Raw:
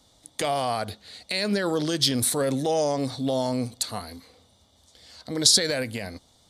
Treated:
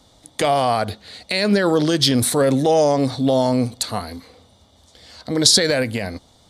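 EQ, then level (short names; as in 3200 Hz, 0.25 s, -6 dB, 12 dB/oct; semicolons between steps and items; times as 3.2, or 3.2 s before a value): high shelf 3700 Hz -6.5 dB; +8.5 dB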